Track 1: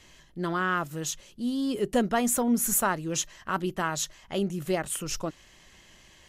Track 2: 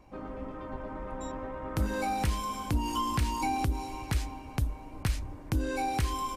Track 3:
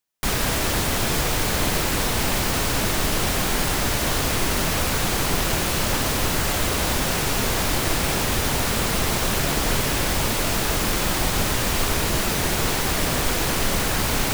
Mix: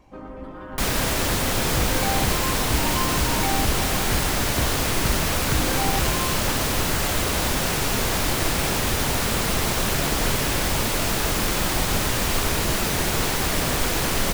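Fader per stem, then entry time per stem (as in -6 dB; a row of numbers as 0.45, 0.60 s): -18.5, +2.5, -0.5 dB; 0.00, 0.00, 0.55 s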